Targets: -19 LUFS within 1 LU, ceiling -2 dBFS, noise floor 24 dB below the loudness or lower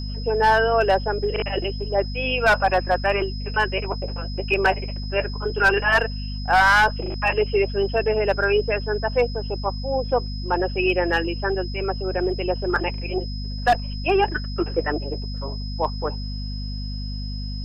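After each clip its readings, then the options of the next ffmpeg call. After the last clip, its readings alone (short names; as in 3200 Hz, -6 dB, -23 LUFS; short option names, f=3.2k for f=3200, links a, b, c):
hum 50 Hz; harmonics up to 250 Hz; hum level -27 dBFS; steady tone 5100 Hz; tone level -37 dBFS; loudness -22.5 LUFS; peak -8.5 dBFS; loudness target -19.0 LUFS
-> -af "bandreject=f=50:t=h:w=4,bandreject=f=100:t=h:w=4,bandreject=f=150:t=h:w=4,bandreject=f=200:t=h:w=4,bandreject=f=250:t=h:w=4"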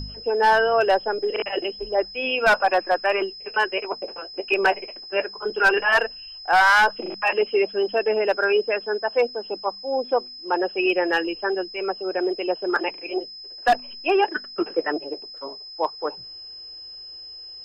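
hum none; steady tone 5100 Hz; tone level -37 dBFS
-> -af "bandreject=f=5.1k:w=30"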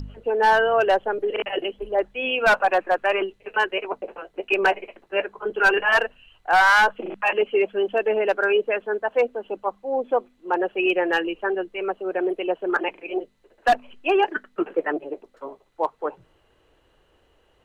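steady tone none; loudness -22.5 LUFS; peak -10.0 dBFS; loudness target -19.0 LUFS
-> -af "volume=3.5dB"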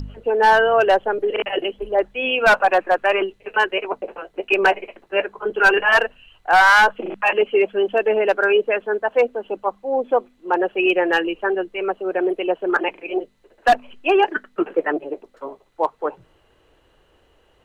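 loudness -19.0 LUFS; peak -6.5 dBFS; noise floor -59 dBFS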